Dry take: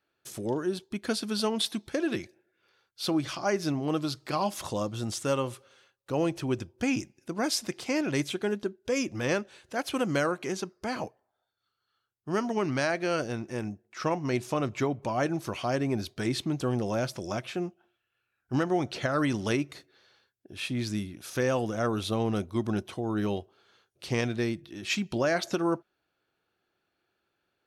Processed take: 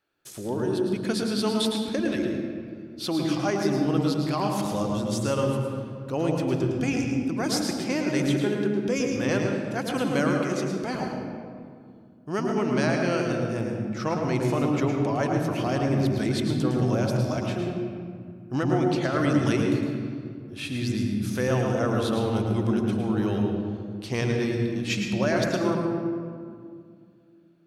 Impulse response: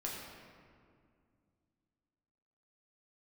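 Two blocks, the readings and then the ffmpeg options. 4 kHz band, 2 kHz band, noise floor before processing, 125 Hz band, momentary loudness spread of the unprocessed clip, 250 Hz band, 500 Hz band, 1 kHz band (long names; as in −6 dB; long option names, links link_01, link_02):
+1.5 dB, +2.0 dB, −81 dBFS, +7.5 dB, 8 LU, +6.0 dB, +4.0 dB, +2.5 dB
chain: -filter_complex "[0:a]asplit=2[link_01][link_02];[1:a]atrim=start_sample=2205,lowshelf=frequency=320:gain=8.5,adelay=108[link_03];[link_02][link_03]afir=irnorm=-1:irlink=0,volume=-3.5dB[link_04];[link_01][link_04]amix=inputs=2:normalize=0"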